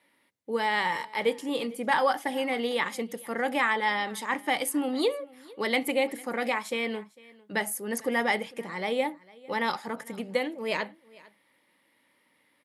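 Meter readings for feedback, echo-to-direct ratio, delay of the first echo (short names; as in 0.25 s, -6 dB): no steady repeat, -23.0 dB, 0.451 s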